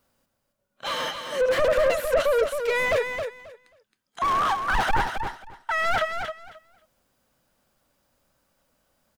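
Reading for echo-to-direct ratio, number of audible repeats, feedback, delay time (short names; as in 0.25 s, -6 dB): -7.0 dB, 2, 18%, 0.268 s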